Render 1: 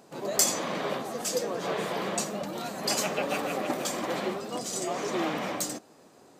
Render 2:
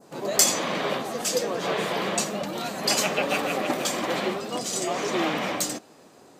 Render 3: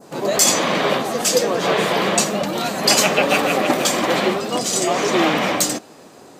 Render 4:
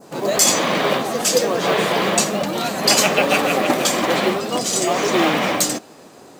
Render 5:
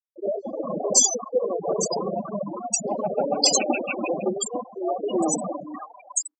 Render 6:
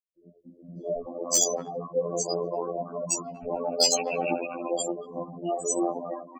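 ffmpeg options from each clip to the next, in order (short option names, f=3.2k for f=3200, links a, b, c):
-af "adynamicequalizer=threshold=0.00562:dfrequency=2900:dqfactor=0.89:tfrequency=2900:tqfactor=0.89:attack=5:release=100:ratio=0.375:range=2:mode=boostabove:tftype=bell,volume=3.5dB"
-af "alimiter=level_in=9.5dB:limit=-1dB:release=50:level=0:latency=1,volume=-1dB"
-af "acrusher=bits=6:mode=log:mix=0:aa=0.000001"
-filter_complex "[0:a]afftfilt=real='re*gte(hypot(re,im),0.398)':imag='im*gte(hypot(re,im),0.398)':win_size=1024:overlap=0.75,equalizer=f=1k:t=o:w=0.67:g=5,equalizer=f=2.5k:t=o:w=0.67:g=-3,equalizer=f=6.3k:t=o:w=0.67:g=6,equalizer=f=16k:t=o:w=0.67:g=10,acrossover=split=1100[a][b];[b]adelay=560[c];[a][c]amix=inputs=2:normalize=0,volume=-4.5dB"
-filter_complex "[0:a]aeval=exprs='clip(val(0),-1,0.282)':c=same,afftfilt=real='hypot(re,im)*cos(PI*b)':imag='0':win_size=2048:overlap=0.75,acrossover=split=220|1700[a][b][c];[c]adelay=380[d];[b]adelay=620[e];[a][e][d]amix=inputs=3:normalize=0"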